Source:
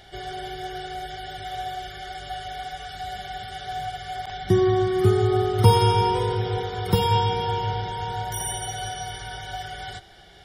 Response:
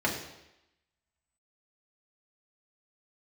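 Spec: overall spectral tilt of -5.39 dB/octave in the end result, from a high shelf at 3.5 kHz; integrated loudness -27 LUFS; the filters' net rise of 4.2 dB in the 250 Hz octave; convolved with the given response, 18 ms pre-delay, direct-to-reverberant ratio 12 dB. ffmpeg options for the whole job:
-filter_complex "[0:a]equalizer=f=250:t=o:g=8.5,highshelf=f=3500:g=4,asplit=2[s0][s1];[1:a]atrim=start_sample=2205,adelay=18[s2];[s1][s2]afir=irnorm=-1:irlink=0,volume=0.0708[s3];[s0][s3]amix=inputs=2:normalize=0,volume=0.631"

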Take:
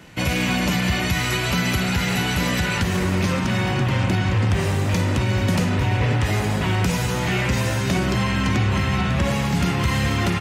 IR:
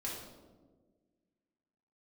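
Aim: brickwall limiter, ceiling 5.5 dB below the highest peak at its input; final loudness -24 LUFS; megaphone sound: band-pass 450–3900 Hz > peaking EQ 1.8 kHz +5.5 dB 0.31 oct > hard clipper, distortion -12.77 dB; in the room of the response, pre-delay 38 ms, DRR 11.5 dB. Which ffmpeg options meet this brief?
-filter_complex "[0:a]alimiter=limit=0.168:level=0:latency=1,asplit=2[s0][s1];[1:a]atrim=start_sample=2205,adelay=38[s2];[s1][s2]afir=irnorm=-1:irlink=0,volume=0.237[s3];[s0][s3]amix=inputs=2:normalize=0,highpass=450,lowpass=3900,equalizer=f=1800:t=o:w=0.31:g=5.5,asoftclip=type=hard:threshold=0.0531,volume=1.68"

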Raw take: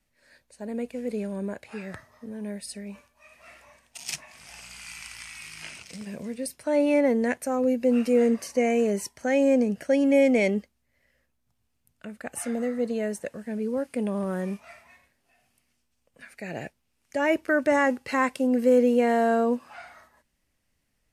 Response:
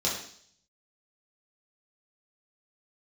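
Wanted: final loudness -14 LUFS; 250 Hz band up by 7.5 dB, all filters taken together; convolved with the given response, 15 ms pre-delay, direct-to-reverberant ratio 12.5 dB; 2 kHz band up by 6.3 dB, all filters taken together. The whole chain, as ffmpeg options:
-filter_complex "[0:a]equalizer=f=250:t=o:g=8,equalizer=f=2000:t=o:g=7.5,asplit=2[s0][s1];[1:a]atrim=start_sample=2205,adelay=15[s2];[s1][s2]afir=irnorm=-1:irlink=0,volume=0.0841[s3];[s0][s3]amix=inputs=2:normalize=0,volume=1.88"

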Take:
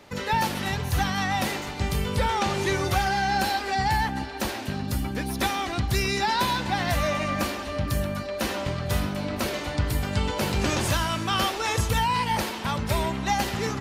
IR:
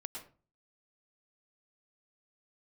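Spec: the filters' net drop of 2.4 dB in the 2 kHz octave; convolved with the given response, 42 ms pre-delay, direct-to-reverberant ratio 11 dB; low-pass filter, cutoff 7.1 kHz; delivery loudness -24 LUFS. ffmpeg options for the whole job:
-filter_complex "[0:a]lowpass=7100,equalizer=f=2000:t=o:g=-3,asplit=2[s0][s1];[1:a]atrim=start_sample=2205,adelay=42[s2];[s1][s2]afir=irnorm=-1:irlink=0,volume=0.355[s3];[s0][s3]amix=inputs=2:normalize=0,volume=1.33"

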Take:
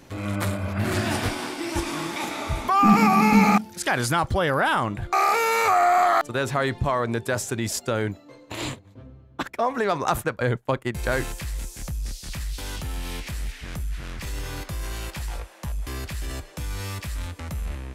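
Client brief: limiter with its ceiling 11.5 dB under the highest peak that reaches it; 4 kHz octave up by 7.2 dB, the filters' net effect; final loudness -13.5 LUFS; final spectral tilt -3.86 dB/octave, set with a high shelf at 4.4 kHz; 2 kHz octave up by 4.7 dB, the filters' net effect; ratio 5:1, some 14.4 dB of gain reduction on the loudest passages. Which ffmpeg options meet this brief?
-af "equalizer=f=2000:t=o:g=3.5,equalizer=f=4000:t=o:g=4,highshelf=f=4400:g=7.5,acompressor=threshold=0.0398:ratio=5,volume=10,alimiter=limit=0.631:level=0:latency=1"

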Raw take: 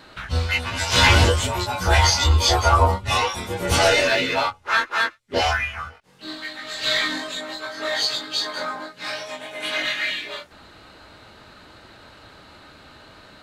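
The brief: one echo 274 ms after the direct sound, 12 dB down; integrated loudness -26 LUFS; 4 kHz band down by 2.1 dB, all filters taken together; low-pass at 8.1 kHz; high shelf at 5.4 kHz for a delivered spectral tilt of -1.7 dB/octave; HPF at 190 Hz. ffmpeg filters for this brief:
-af "highpass=190,lowpass=8100,equalizer=f=4000:t=o:g=-5.5,highshelf=f=5400:g=7.5,aecho=1:1:274:0.251,volume=0.631"

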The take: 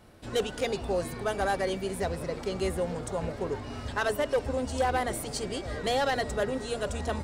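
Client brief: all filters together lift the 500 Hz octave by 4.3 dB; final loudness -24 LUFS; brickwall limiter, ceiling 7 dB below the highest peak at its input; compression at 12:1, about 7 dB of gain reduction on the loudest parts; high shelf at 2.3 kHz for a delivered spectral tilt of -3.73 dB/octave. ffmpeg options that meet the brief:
-af "equalizer=f=500:t=o:g=4.5,highshelf=f=2300:g=8.5,acompressor=threshold=0.0562:ratio=12,volume=2.66,alimiter=limit=0.188:level=0:latency=1"

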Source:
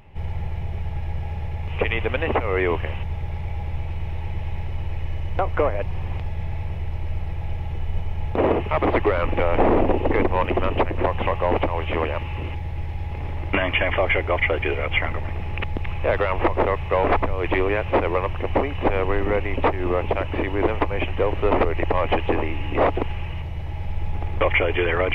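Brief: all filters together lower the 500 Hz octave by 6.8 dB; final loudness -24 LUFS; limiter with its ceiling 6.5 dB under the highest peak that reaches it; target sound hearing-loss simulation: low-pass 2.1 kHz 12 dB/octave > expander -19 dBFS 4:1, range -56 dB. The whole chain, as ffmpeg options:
-af "equalizer=f=500:t=o:g=-8.5,alimiter=limit=0.188:level=0:latency=1,lowpass=2100,agate=range=0.00158:threshold=0.112:ratio=4,volume=2.99"

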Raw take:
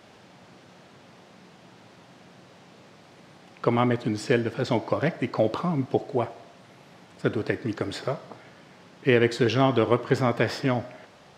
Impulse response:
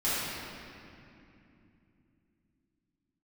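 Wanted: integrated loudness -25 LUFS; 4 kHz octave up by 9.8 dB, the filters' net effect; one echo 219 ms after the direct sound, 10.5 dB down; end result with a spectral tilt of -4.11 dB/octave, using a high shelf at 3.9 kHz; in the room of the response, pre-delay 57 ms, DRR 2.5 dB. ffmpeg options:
-filter_complex "[0:a]highshelf=f=3900:g=9,equalizer=f=4000:t=o:g=7.5,aecho=1:1:219:0.299,asplit=2[s0][s1];[1:a]atrim=start_sample=2205,adelay=57[s2];[s1][s2]afir=irnorm=-1:irlink=0,volume=0.211[s3];[s0][s3]amix=inputs=2:normalize=0,volume=0.708"

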